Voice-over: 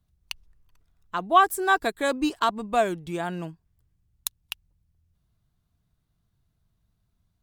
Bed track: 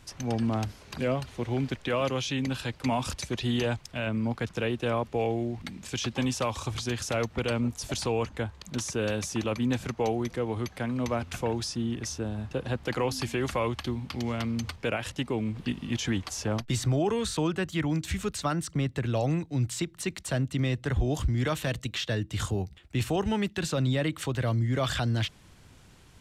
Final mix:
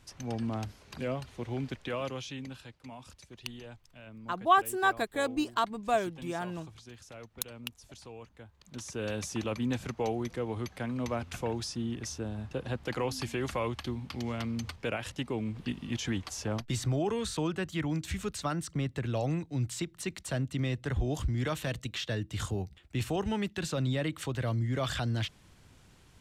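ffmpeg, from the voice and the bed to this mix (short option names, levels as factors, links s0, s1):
-filter_complex "[0:a]adelay=3150,volume=0.531[s0];[1:a]volume=2.82,afade=t=out:st=1.83:d=0.96:silence=0.223872,afade=t=in:st=8.51:d=0.72:silence=0.177828[s1];[s0][s1]amix=inputs=2:normalize=0"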